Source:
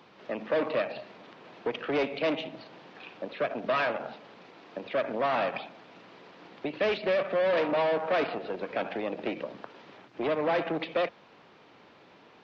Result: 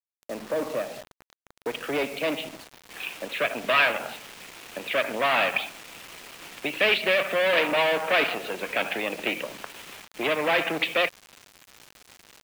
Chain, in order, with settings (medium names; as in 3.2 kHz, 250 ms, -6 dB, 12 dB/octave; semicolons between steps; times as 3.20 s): peaking EQ 2.7 kHz -5.5 dB 1.8 oct, from 1.67 s +4 dB, from 2.90 s +14 dB; bit crusher 7-bit